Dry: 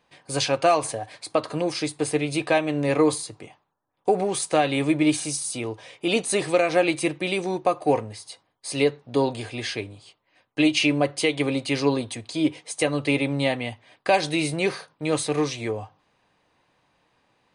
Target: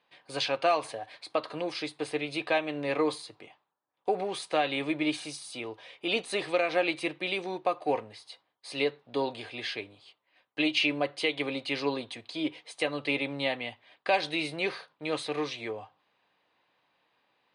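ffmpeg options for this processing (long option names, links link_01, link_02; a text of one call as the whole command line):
ffmpeg -i in.wav -af "highpass=frequency=420:poles=1,highshelf=frequency=5200:width_type=q:width=1.5:gain=-9.5,volume=-5dB" out.wav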